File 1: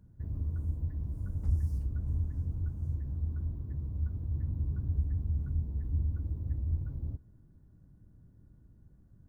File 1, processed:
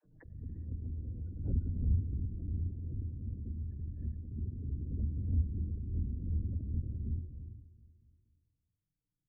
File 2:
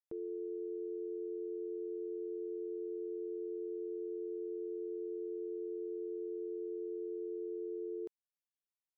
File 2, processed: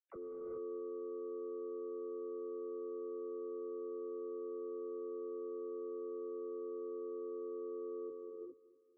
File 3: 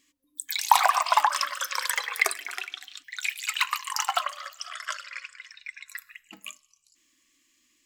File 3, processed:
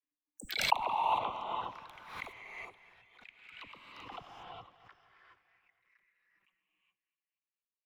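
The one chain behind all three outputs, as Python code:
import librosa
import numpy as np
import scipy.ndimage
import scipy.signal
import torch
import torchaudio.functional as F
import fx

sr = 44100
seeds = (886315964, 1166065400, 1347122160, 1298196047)

y = fx.power_curve(x, sr, exponent=2.0)
y = fx.dispersion(y, sr, late='lows', ms=49.0, hz=370.0)
y = fx.env_flanger(y, sr, rest_ms=6.6, full_db=-40.5)
y = fx.spec_gate(y, sr, threshold_db=-30, keep='strong')
y = fx.air_absorb(y, sr, metres=400.0)
y = fx.echo_feedback(y, sr, ms=238, feedback_pct=56, wet_db=-17.5)
y = fx.rev_gated(y, sr, seeds[0], gate_ms=440, shape='rising', drr_db=-2.0)
y = fx.pre_swell(y, sr, db_per_s=79.0)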